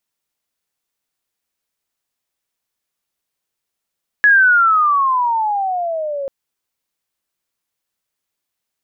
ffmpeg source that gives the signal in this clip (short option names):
-f lavfi -i "aevalsrc='pow(10,(-6.5-14*t/2.04)/20)*sin(2*PI*1700*2.04/log(540/1700)*(exp(log(540/1700)*t/2.04)-1))':d=2.04:s=44100"